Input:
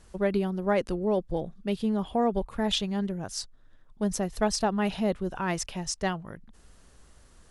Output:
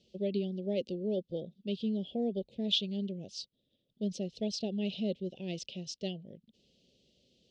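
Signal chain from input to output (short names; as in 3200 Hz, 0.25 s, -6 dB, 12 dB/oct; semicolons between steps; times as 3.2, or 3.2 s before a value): Chebyshev band-stop 510–3000 Hz, order 3; speaker cabinet 230–4600 Hz, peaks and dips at 310 Hz -7 dB, 450 Hz -7 dB, 1200 Hz +5 dB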